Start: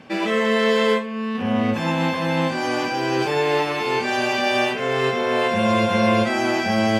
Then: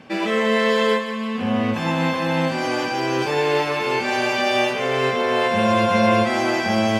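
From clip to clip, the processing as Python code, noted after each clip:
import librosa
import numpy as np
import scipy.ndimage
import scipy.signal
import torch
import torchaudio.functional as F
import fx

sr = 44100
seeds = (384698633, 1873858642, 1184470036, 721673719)

y = fx.echo_thinned(x, sr, ms=172, feedback_pct=66, hz=370.0, wet_db=-10.0)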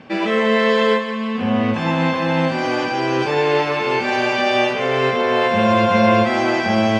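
y = fx.air_absorb(x, sr, metres=84.0)
y = y * 10.0 ** (3.0 / 20.0)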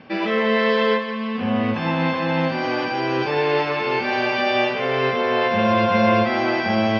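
y = scipy.signal.sosfilt(scipy.signal.cheby1(4, 1.0, 5300.0, 'lowpass', fs=sr, output='sos'), x)
y = y * 10.0 ** (-2.0 / 20.0)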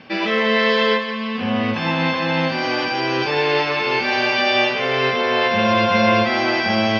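y = fx.high_shelf(x, sr, hz=2400.0, db=10.0)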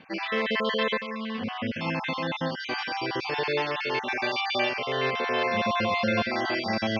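y = fx.spec_dropout(x, sr, seeds[0], share_pct=32)
y = y * 10.0 ** (-7.5 / 20.0)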